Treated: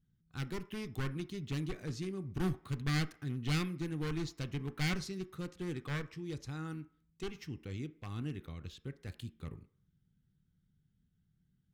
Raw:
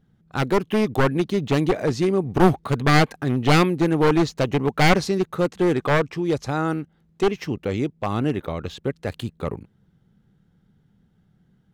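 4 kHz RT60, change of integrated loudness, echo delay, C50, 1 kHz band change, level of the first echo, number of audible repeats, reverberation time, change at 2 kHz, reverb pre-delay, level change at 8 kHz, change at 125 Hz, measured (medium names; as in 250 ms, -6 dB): 0.55 s, -17.5 dB, no echo, 17.0 dB, -24.5 dB, no echo, no echo, 0.50 s, -17.5 dB, 3 ms, -13.0 dB, -13.5 dB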